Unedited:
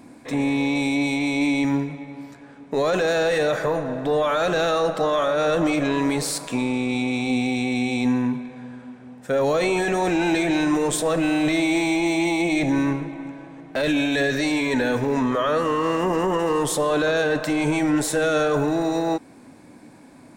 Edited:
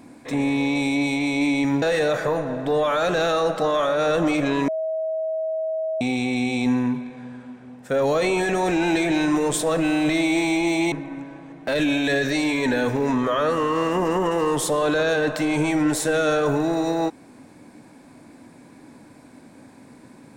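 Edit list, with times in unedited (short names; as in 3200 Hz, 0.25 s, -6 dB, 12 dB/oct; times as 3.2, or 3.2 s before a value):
1.82–3.21 cut
6.07–7.4 bleep 639 Hz -22.5 dBFS
12.31–13 cut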